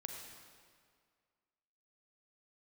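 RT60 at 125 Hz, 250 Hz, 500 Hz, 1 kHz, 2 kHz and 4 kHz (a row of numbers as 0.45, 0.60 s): 1.9, 1.9, 2.0, 2.0, 1.8, 1.6 s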